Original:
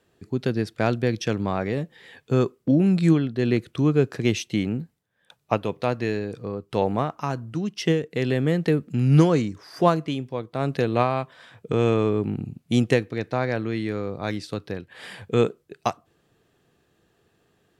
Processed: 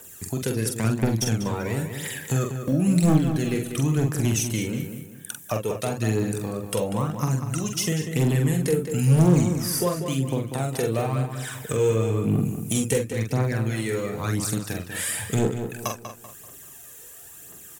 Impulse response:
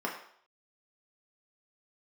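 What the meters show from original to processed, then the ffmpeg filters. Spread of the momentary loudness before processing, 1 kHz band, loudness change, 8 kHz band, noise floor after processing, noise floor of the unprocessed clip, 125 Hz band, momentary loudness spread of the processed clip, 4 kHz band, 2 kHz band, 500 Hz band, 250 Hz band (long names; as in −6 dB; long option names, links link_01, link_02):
11 LU, −4.5 dB, −0.5 dB, +14.5 dB, −45 dBFS, −67 dBFS, +2.0 dB, 15 LU, +1.5 dB, −1.0 dB, −2.5 dB, −1.0 dB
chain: -filter_complex "[0:a]tiltshelf=frequency=750:gain=-5,acrossover=split=350[link_01][link_02];[link_02]acompressor=threshold=-43dB:ratio=3[link_03];[link_01][link_03]amix=inputs=2:normalize=0,aphaser=in_gain=1:out_gain=1:delay=2.3:decay=0.65:speed=0.97:type=triangular,aexciter=amount=7.2:drive=7.7:freq=6300,asplit=2[link_04][link_05];[link_05]acompressor=threshold=-35dB:ratio=6,volume=3dB[link_06];[link_04][link_06]amix=inputs=2:normalize=0,asoftclip=type=hard:threshold=-15.5dB,asplit=2[link_07][link_08];[link_08]adelay=45,volume=-5dB[link_09];[link_07][link_09]amix=inputs=2:normalize=0,asplit=2[link_10][link_11];[link_11]adelay=193,lowpass=frequency=4100:poles=1,volume=-8dB,asplit=2[link_12][link_13];[link_13]adelay=193,lowpass=frequency=4100:poles=1,volume=0.38,asplit=2[link_14][link_15];[link_15]adelay=193,lowpass=frequency=4100:poles=1,volume=0.38,asplit=2[link_16][link_17];[link_17]adelay=193,lowpass=frequency=4100:poles=1,volume=0.38[link_18];[link_12][link_14][link_16][link_18]amix=inputs=4:normalize=0[link_19];[link_10][link_19]amix=inputs=2:normalize=0"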